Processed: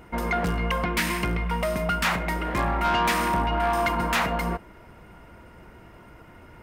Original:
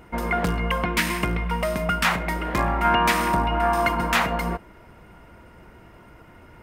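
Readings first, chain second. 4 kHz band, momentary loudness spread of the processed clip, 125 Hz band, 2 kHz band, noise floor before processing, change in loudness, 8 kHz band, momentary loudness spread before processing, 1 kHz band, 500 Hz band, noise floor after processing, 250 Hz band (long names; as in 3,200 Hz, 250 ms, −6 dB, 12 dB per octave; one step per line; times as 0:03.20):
−2.0 dB, 5 LU, −1.5 dB, −2.5 dB, −49 dBFS, −2.0 dB, −2.0 dB, 6 LU, −2.5 dB, −2.0 dB, −49 dBFS, −2.0 dB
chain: soft clipping −17 dBFS, distortion −14 dB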